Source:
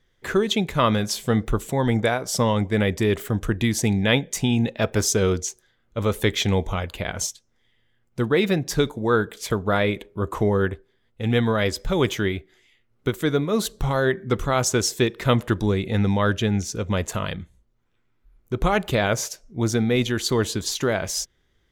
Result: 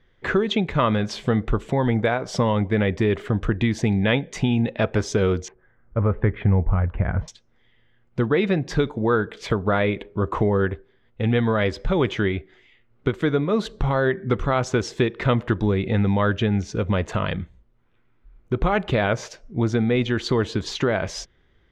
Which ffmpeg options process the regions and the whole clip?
ffmpeg -i in.wav -filter_complex "[0:a]asettb=1/sr,asplit=3[link_01][link_02][link_03];[link_01]atrim=end=5.484[link_04];[link_02]atrim=start=5.48:end=7.28,asetpts=PTS-STARTPTS,afade=type=in:duration=0.004:curve=qsin,afade=type=out:start_time=1.796:duration=0.004:curve=qsin,lowpass=frequency=1800:width=0.5412,lowpass=frequency=1800:width=1.3066,asubboost=boost=7:cutoff=190[link_05];[link_03]atrim=start=7.276[link_06];[link_04][link_05]acrossfade=duration=0.004:curve1=hsin:curve2=qsin[link_07];[link_07][link_06]acrossfade=duration=0.004:curve1=qsin:curve2=hsin,lowpass=2900,acompressor=threshold=-27dB:ratio=2,volume=6dB" out.wav

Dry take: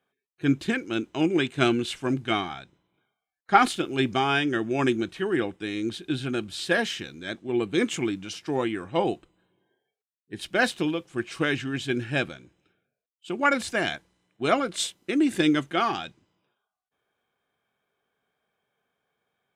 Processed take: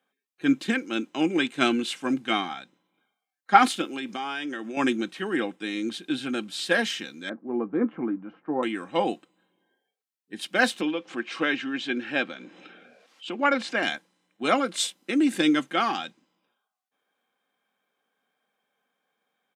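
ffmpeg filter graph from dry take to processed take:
ffmpeg -i in.wav -filter_complex "[0:a]asettb=1/sr,asplit=3[link_01][link_02][link_03];[link_01]atrim=end=3.874[link_04];[link_02]atrim=start=3.87:end=4.77,asetpts=PTS-STARTPTS,afade=type=in:duration=0.004:curve=qsin,afade=type=out:start_time=0.896:duration=0.004:curve=qsin,highpass=frequency=240:poles=1,acompressor=threshold=-29dB:ratio=6:attack=3.2:release=140:knee=1:detection=peak[link_05];[link_03]atrim=start=4.766[link_06];[link_04][link_05]acrossfade=duration=0.004:curve1=hsin:curve2=qsin[link_07];[link_07][link_06]acrossfade=duration=0.004:curve1=qsin:curve2=hsin,asettb=1/sr,asplit=3[link_08][link_09][link_10];[link_08]atrim=end=7.294[link_11];[link_09]atrim=start=7.29:end=8.63,asetpts=PTS-STARTPTS,afade=type=in:duration=0.004:curve=qsin,afade=type=out:start_time=1.336:duration=0.004:curve=qsin,lowpass=frequency=1300:width=0.5412,lowpass=frequency=1300:width=1.3066,asplit=2[link_12][link_13];[link_13]adelay=13,volume=-12.5dB[link_14];[link_12][link_14]amix=inputs=2:normalize=0,atrim=end_sample=59094[link_15];[link_10]atrim=start=8.626[link_16];[link_11][link_15]acrossfade=duration=0.004:curve1=hsin:curve2=qsin[link_17];[link_17][link_16]acrossfade=duration=0.004:curve1=qsin:curve2=hsin,asettb=1/sr,asplit=3[link_18][link_19][link_20];[link_18]atrim=end=10.814[link_21];[link_19]atrim=start=10.81:end=13.83,asetpts=PTS-STARTPTS,afade=type=in:duration=0.004:curve=qsin,afade=type=out:start_time=3.016:duration=0.004:curve=qsin,highpass=200,lowpass=4100,acompressor=mode=upward:threshold=-29dB:ratio=2.5:attack=3.2:release=140:knee=2.83:detection=peak[link_22];[link_20]atrim=start=13.826[link_23];[link_21][link_22]acrossfade=duration=0.004:curve1=hsin:curve2=qsin[link_24];[link_24][link_23]acrossfade=duration=0.004:curve1=qsin:curve2=hsin,highpass=frequency=180:width=0.5412,highpass=frequency=180:width=1.3066,equalizer=frequency=390:width_type=o:width=1.2:gain=-3,aecho=1:1:3.8:0.34,volume=1dB" out.wav

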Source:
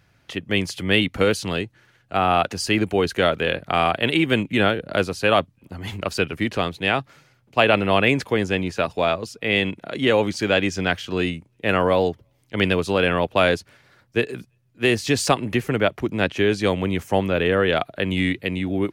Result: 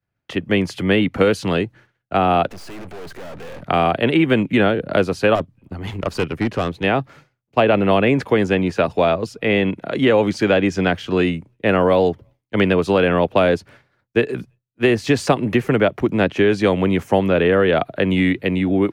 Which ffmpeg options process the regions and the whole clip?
ffmpeg -i in.wav -filter_complex "[0:a]asettb=1/sr,asplit=3[link_01][link_02][link_03];[link_01]atrim=end=2.484[link_04];[link_02]atrim=start=2.48:end=3.63,asetpts=PTS-STARTPTS,afade=type=in:duration=0.004:curve=qsin,afade=type=out:start_time=1.146:duration=0.004:curve=qsin,acontrast=84,aeval=exprs='(tanh(31.6*val(0)+0.4)-tanh(0.4))/31.6':channel_layout=same,aeval=exprs='max(val(0),0)':channel_layout=same[link_05];[link_03]atrim=start=3.626[link_06];[link_04][link_05]acrossfade=duration=0.004:curve1=hsin:curve2=qsin[link_07];[link_07][link_06]acrossfade=duration=0.004:curve1=qsin:curve2=hsin,asettb=1/sr,asplit=3[link_08][link_09][link_10];[link_08]atrim=end=5.354[link_11];[link_09]atrim=start=5.35:end=6.84,asetpts=PTS-STARTPTS,afade=type=in:duration=0.004:curve=qsin,afade=type=out:start_time=1.486:duration=0.004:curve=qsin,lowshelf=frequency=87:gain=10.5,aeval=exprs='(tanh(8.91*val(0)+0.7)-tanh(0.7))/8.91':channel_layout=same[link_12];[link_10]atrim=start=6.836[link_13];[link_11][link_12]acrossfade=duration=0.004:curve1=hsin:curve2=qsin[link_14];[link_14][link_13]acrossfade=duration=0.004:curve1=qsin:curve2=hsin,agate=range=-33dB:threshold=-44dB:ratio=3:detection=peak,highshelf=frequency=2800:gain=-10.5,acrossover=split=110|690|2400[link_15][link_16][link_17][link_18];[link_15]acompressor=threshold=-45dB:ratio=4[link_19];[link_16]acompressor=threshold=-20dB:ratio=4[link_20];[link_17]acompressor=threshold=-29dB:ratio=4[link_21];[link_18]acompressor=threshold=-36dB:ratio=4[link_22];[link_19][link_20][link_21][link_22]amix=inputs=4:normalize=0,volume=7.5dB" out.wav

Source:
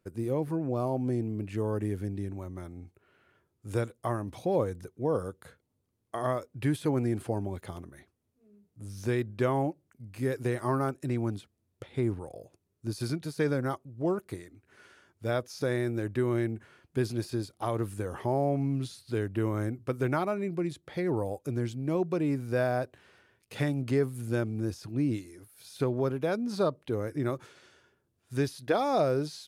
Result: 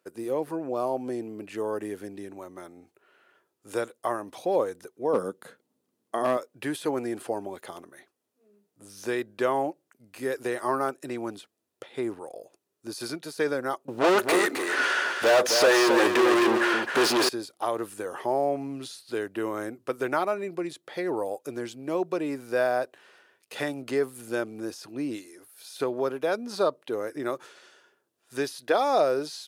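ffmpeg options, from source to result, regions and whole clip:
ffmpeg -i in.wav -filter_complex "[0:a]asettb=1/sr,asplit=3[link_01][link_02][link_03];[link_01]atrim=end=5.134[link_04];[link_02]atrim=start=5.13:end=6.37,asetpts=PTS-STARTPTS,afade=type=in:duration=0.004:curve=qsin,afade=type=out:start_time=1.236:duration=0.004:curve=qsin,equalizer=frequency=210:width=1:gain=12.5,asoftclip=type=hard:threshold=-17dB[link_05];[link_03]atrim=start=6.366[link_06];[link_04][link_05]acrossfade=duration=0.004:curve1=hsin:curve2=qsin[link_07];[link_07][link_06]acrossfade=duration=0.004:curve1=qsin:curve2=hsin,asettb=1/sr,asplit=3[link_08][link_09][link_10];[link_08]atrim=end=13.884[link_11];[link_09]atrim=start=13.88:end=17.29,asetpts=PTS-STARTPTS,afade=type=in:duration=0.004:curve=qsin,afade=type=out:start_time=3.406:duration=0.004:curve=qsin,asplit=2[link_12][link_13];[link_13]highpass=frequency=720:poles=1,volume=38dB,asoftclip=type=tanh:threshold=-16dB[link_14];[link_12][link_14]amix=inputs=2:normalize=0,lowpass=frequency=2800:poles=1,volume=-6dB,aecho=1:1:264:0.501,atrim=end_sample=150381[link_15];[link_10]atrim=start=17.286[link_16];[link_11][link_15]acrossfade=duration=0.004:curve1=hsin:curve2=qsin[link_17];[link_17][link_16]acrossfade=duration=0.004:curve1=qsin:curve2=hsin,highpass=410,bandreject=frequency=2200:width=17,volume=5dB" out.wav

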